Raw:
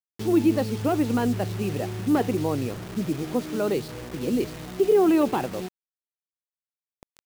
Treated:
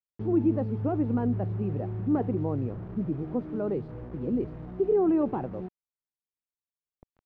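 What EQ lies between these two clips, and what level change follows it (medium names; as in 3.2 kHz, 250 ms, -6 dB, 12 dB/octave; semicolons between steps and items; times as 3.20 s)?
low-pass 1.1 kHz 12 dB/octave; bass shelf 190 Hz +9 dB; -6.5 dB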